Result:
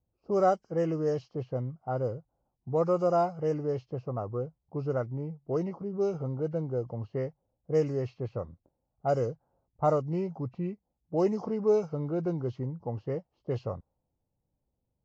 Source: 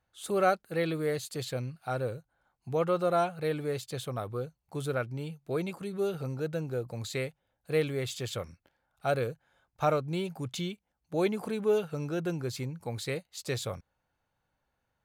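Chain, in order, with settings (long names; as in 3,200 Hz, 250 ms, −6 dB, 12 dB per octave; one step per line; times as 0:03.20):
hearing-aid frequency compression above 1,500 Hz 1.5 to 1
flat-topped bell 2,400 Hz −13.5 dB
low-pass that shuts in the quiet parts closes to 410 Hz, open at −23.5 dBFS
level +2 dB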